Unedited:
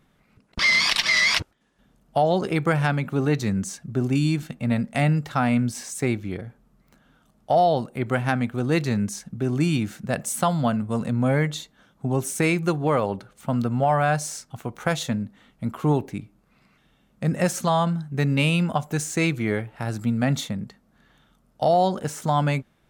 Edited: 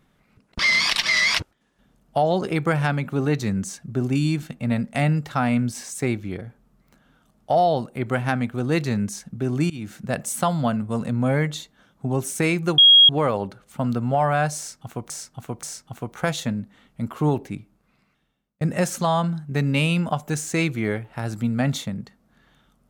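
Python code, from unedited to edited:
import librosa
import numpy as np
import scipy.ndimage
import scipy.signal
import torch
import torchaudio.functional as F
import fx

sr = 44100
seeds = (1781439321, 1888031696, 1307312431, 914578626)

y = fx.edit(x, sr, fx.fade_in_from(start_s=9.7, length_s=0.3, floor_db=-21.5),
    fx.insert_tone(at_s=12.78, length_s=0.31, hz=3280.0, db=-8.0),
    fx.repeat(start_s=14.26, length_s=0.53, count=3),
    fx.fade_out_span(start_s=16.19, length_s=1.05), tone=tone)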